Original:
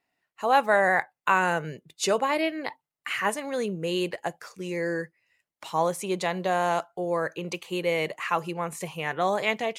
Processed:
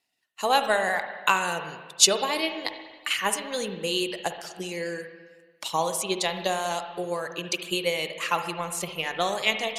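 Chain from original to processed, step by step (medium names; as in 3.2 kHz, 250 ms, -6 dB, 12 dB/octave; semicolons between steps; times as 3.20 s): reverb removal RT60 0.59 s; transient shaper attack +6 dB, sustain 0 dB; high-order bell 6.1 kHz +12 dB 2.5 oct; hum notches 50/100/150 Hz; reverberation RT60 1.4 s, pre-delay 46 ms, DRR 7 dB; trim -4 dB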